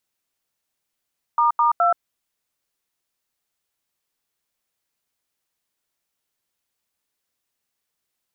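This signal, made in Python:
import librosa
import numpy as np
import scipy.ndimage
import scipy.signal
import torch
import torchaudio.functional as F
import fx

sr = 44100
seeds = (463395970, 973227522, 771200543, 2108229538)

y = fx.dtmf(sr, digits='**2', tone_ms=127, gap_ms=83, level_db=-17.0)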